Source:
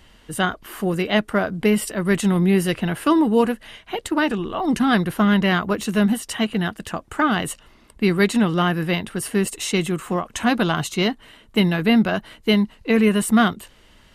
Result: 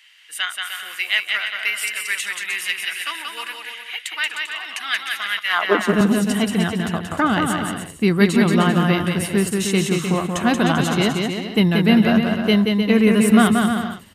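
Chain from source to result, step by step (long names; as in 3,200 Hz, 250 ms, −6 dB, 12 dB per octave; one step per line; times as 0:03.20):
high-pass filter sweep 2,200 Hz → 90 Hz, 0:05.43–0:05.95
bouncing-ball delay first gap 180 ms, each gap 0.7×, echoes 5
0:05.39–0:06.01: multiband upward and downward expander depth 100%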